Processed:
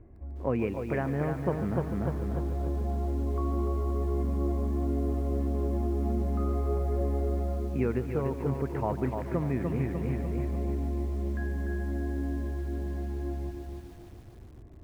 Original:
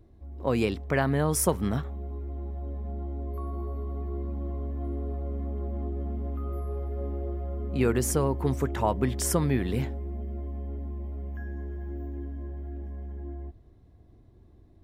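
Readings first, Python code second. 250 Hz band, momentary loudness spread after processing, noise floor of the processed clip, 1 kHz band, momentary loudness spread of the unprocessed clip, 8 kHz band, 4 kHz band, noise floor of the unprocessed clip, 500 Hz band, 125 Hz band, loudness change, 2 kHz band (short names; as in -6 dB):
+0.5 dB, 6 LU, -48 dBFS, -2.5 dB, 12 LU, under -20 dB, under -10 dB, -55 dBFS, -1.0 dB, +1.0 dB, 0.0 dB, -4.5 dB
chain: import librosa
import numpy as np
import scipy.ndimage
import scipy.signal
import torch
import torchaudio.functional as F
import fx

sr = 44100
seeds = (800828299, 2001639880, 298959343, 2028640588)

p1 = scipy.signal.sosfilt(scipy.signal.butter(8, 2500.0, 'lowpass', fs=sr, output='sos'), x)
p2 = fx.dynamic_eq(p1, sr, hz=1400.0, q=0.8, threshold_db=-42.0, ratio=4.0, max_db=-4)
p3 = p2 + fx.echo_feedback(p2, sr, ms=296, feedback_pct=37, wet_db=-5.5, dry=0)
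p4 = fx.rider(p3, sr, range_db=5, speed_s=0.5)
y = fx.echo_crushed(p4, sr, ms=145, feedback_pct=80, bits=8, wet_db=-14.0)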